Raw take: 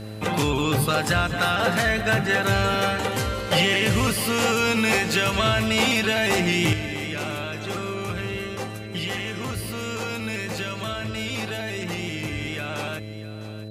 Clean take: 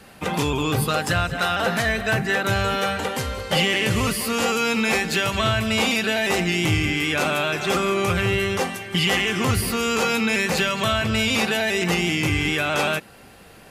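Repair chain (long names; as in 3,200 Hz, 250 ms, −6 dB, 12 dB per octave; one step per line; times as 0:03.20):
hum removal 107.1 Hz, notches 6
notch filter 4,000 Hz, Q 30
echo removal 653 ms −15 dB
level 0 dB, from 0:06.73 +9 dB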